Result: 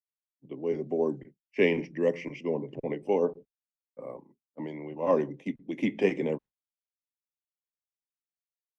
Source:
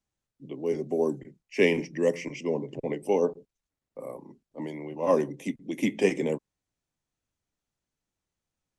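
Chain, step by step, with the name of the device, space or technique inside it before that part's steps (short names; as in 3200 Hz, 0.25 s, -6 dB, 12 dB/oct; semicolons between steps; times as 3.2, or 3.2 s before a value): hearing-loss simulation (LPF 3200 Hz 12 dB/oct; expander -38 dBFS); gain -1.5 dB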